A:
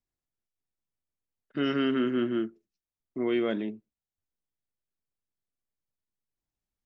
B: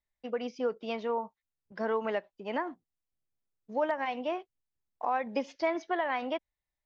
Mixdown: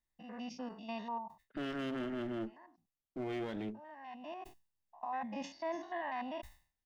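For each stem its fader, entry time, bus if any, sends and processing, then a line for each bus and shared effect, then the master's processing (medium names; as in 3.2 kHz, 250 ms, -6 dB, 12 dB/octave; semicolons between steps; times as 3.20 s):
-5.0 dB, 0.00 s, no send, one-sided clip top -36 dBFS, bottom -20 dBFS
-5.5 dB, 0.00 s, no send, spectrogram pixelated in time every 100 ms; comb 1.1 ms, depth 83%; decay stretcher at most 140 dB/s; auto duck -19 dB, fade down 0.35 s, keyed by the first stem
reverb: none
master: peak limiter -30.5 dBFS, peak gain reduction 8.5 dB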